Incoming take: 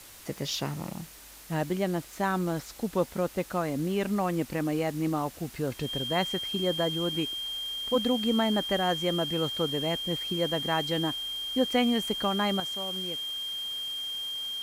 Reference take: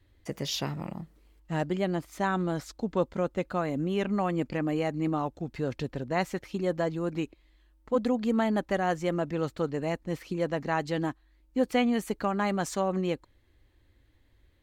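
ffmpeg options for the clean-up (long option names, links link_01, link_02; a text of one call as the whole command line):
ffmpeg -i in.wav -af "bandreject=frequency=3200:width=30,afwtdn=0.004,asetnsamples=nb_out_samples=441:pad=0,asendcmd='12.6 volume volume 11dB',volume=0dB" out.wav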